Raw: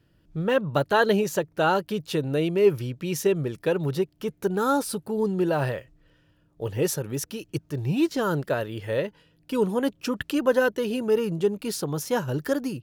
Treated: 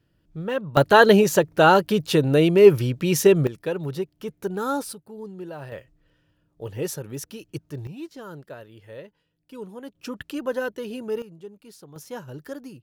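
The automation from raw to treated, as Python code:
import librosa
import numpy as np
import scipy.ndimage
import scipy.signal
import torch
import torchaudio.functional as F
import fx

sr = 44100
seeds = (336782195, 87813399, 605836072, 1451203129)

y = fx.gain(x, sr, db=fx.steps((0.0, -4.0), (0.77, 7.0), (3.47, -3.0), (4.93, -12.5), (5.72, -4.0), (7.87, -14.0), (9.95, -6.0), (11.22, -17.5), (11.96, -10.5)))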